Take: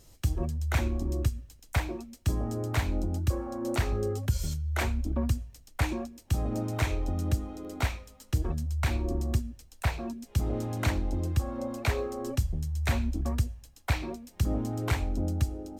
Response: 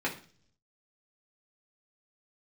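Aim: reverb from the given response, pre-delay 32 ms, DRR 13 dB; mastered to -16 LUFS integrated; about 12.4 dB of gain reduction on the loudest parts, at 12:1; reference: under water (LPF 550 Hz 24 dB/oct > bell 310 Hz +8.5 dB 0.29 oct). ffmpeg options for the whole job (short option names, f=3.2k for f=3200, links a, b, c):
-filter_complex "[0:a]acompressor=threshold=-33dB:ratio=12,asplit=2[a][b];[1:a]atrim=start_sample=2205,adelay=32[c];[b][c]afir=irnorm=-1:irlink=0,volume=-21dB[d];[a][d]amix=inputs=2:normalize=0,lowpass=f=550:w=0.5412,lowpass=f=550:w=1.3066,equalizer=f=310:t=o:w=0.29:g=8.5,volume=22dB"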